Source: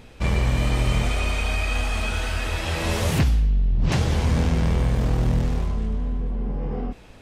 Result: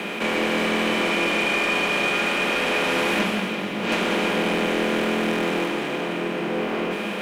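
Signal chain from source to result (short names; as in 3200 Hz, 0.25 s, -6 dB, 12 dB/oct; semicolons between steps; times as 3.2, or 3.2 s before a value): per-bin compression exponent 0.4; steep high-pass 270 Hz 48 dB/oct; resonant high shelf 4000 Hz -7.5 dB, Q 1.5; sample leveller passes 2; frequency shift -69 Hz; echo with dull and thin repeats by turns 0.169 s, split 1900 Hz, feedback 74%, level -9.5 dB; reverb RT60 0.40 s, pre-delay 5 ms, DRR 8.5 dB; gain -6 dB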